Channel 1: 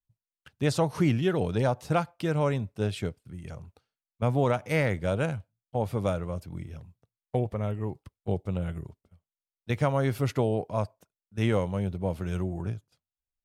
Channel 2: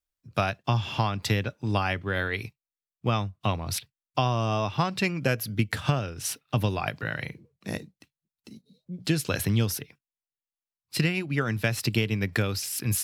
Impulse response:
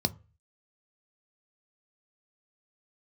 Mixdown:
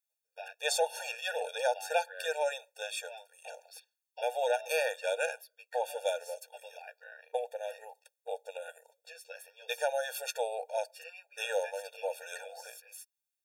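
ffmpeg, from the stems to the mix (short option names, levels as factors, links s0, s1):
-filter_complex "[0:a]highshelf=f=3600:g=11.5,volume=1,asplit=2[s0][s1];[s1]volume=0.0841[s2];[1:a]asplit=2[s3][s4];[s4]adelay=11.3,afreqshift=0.61[s5];[s3][s5]amix=inputs=2:normalize=1,volume=0.224[s6];[2:a]atrim=start_sample=2205[s7];[s2][s7]afir=irnorm=-1:irlink=0[s8];[s0][s6][s8]amix=inputs=3:normalize=0,afftfilt=real='re*eq(mod(floor(b*sr/1024/470),2),1)':imag='im*eq(mod(floor(b*sr/1024/470),2),1)':win_size=1024:overlap=0.75"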